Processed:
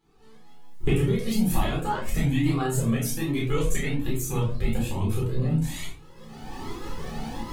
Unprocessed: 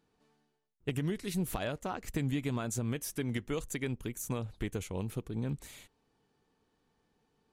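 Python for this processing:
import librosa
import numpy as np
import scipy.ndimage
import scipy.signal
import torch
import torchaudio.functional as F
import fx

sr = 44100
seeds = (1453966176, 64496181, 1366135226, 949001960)

y = fx.pitch_trill(x, sr, semitones=2.0, every_ms=349)
y = fx.recorder_agc(y, sr, target_db=-27.5, rise_db_per_s=28.0, max_gain_db=30)
y = fx.doubler(y, sr, ms=31.0, db=-3.5)
y = fx.room_shoebox(y, sr, seeds[0], volume_m3=330.0, walls='furnished', distance_m=4.0)
y = fx.comb_cascade(y, sr, direction='rising', hz=1.2)
y = y * librosa.db_to_amplitude(4.5)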